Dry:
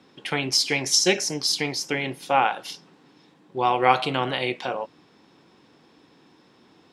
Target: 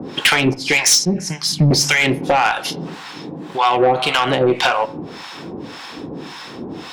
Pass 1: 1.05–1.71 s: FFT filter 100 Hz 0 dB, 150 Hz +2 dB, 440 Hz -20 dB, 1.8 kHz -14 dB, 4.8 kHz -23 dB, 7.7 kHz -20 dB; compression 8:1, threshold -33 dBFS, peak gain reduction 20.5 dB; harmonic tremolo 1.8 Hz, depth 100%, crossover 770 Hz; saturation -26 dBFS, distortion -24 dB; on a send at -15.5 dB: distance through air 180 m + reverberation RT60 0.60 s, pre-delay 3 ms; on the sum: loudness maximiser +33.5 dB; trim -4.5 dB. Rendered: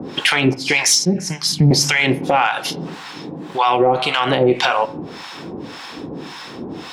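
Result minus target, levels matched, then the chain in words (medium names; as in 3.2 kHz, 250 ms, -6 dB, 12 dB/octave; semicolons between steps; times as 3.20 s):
saturation: distortion -12 dB
1.05–1.71 s: FFT filter 100 Hz 0 dB, 150 Hz +2 dB, 440 Hz -20 dB, 1.8 kHz -14 dB, 4.8 kHz -23 dB, 7.7 kHz -20 dB; compression 8:1, threshold -33 dBFS, peak gain reduction 20.5 dB; harmonic tremolo 1.8 Hz, depth 100%, crossover 770 Hz; saturation -36.5 dBFS, distortion -11 dB; on a send at -15.5 dB: distance through air 180 m + reverberation RT60 0.60 s, pre-delay 3 ms; on the sum: loudness maximiser +33.5 dB; trim -4.5 dB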